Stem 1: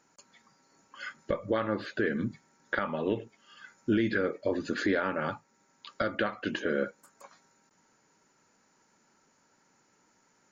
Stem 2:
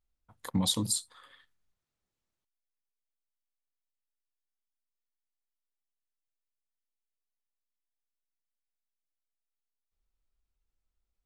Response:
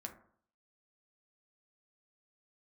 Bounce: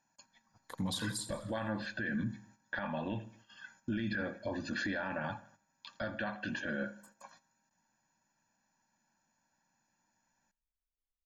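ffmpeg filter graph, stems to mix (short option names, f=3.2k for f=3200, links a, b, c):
-filter_complex "[0:a]aecho=1:1:1.2:0.93,volume=-6.5dB,asplit=3[a][b][c];[b]volume=-7dB[d];[c]volume=-20.5dB[e];[1:a]highshelf=f=5.7k:g=-8,adelay=250,volume=-4.5dB,asplit=2[f][g];[g]volume=-13dB[h];[2:a]atrim=start_sample=2205[i];[d][i]afir=irnorm=-1:irlink=0[j];[e][h]amix=inputs=2:normalize=0,aecho=0:1:83|166|249|332|415|498|581:1|0.49|0.24|0.118|0.0576|0.0282|0.0138[k];[a][f][j][k]amix=inputs=4:normalize=0,agate=range=-9dB:threshold=-60dB:ratio=16:detection=peak,alimiter=level_in=3.5dB:limit=-24dB:level=0:latency=1:release=24,volume=-3.5dB"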